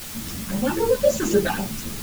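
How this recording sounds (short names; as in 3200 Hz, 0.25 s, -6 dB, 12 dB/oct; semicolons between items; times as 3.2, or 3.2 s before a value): phasing stages 8, 3.8 Hz, lowest notch 510–3200 Hz; a quantiser's noise floor 6-bit, dither triangular; a shimmering, thickened sound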